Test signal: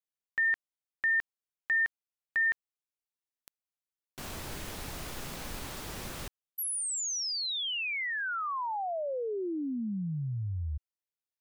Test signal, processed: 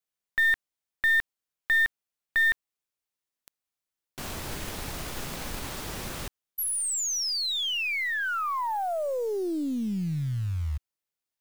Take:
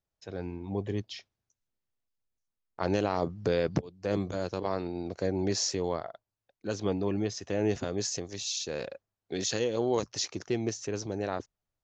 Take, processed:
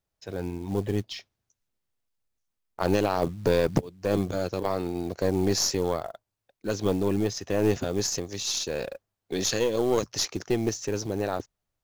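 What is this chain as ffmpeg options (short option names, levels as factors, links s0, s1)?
-af "aeval=exprs='0.211*(cos(1*acos(clip(val(0)/0.211,-1,1)))-cos(1*PI/2))+0.0237*(cos(4*acos(clip(val(0)/0.211,-1,1)))-cos(4*PI/2))':c=same,acrusher=bits=6:mode=log:mix=0:aa=0.000001,volume=1.68"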